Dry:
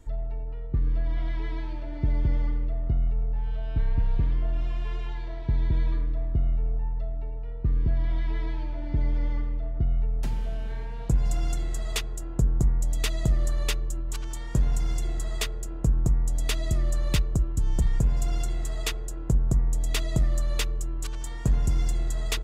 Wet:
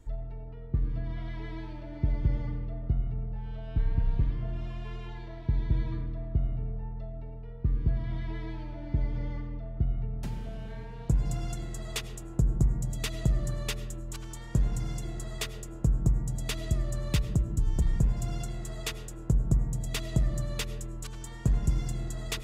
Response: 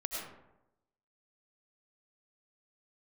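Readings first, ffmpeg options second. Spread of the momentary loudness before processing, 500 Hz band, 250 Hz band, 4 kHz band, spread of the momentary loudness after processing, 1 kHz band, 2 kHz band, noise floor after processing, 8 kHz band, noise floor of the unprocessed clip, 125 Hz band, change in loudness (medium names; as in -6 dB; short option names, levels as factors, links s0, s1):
8 LU, -3.0 dB, -0.5 dB, -4.0 dB, 11 LU, -4.0 dB, -4.0 dB, -41 dBFS, -4.0 dB, -33 dBFS, -2.0 dB, -4.0 dB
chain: -filter_complex "[0:a]asplit=2[s0][s1];[s1]equalizer=f=130:w=0.37:g=14.5[s2];[1:a]atrim=start_sample=2205[s3];[s2][s3]afir=irnorm=-1:irlink=0,volume=0.188[s4];[s0][s4]amix=inputs=2:normalize=0,volume=0.531"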